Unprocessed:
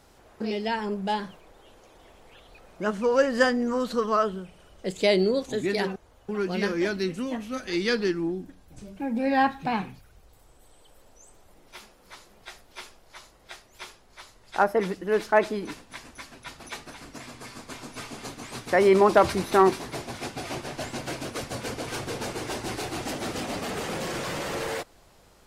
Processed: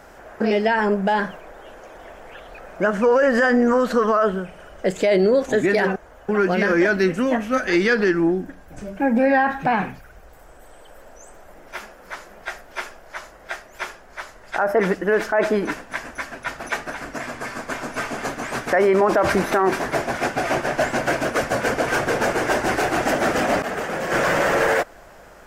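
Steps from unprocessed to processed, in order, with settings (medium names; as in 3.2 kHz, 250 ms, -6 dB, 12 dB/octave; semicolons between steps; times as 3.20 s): fifteen-band graphic EQ 100 Hz -7 dB, 630 Hz +7 dB, 1.6 kHz +9 dB, 4 kHz -8 dB, 10 kHz -6 dB; 23.62–24.12 s: expander -22 dBFS; loudness maximiser +17.5 dB; trim -8.5 dB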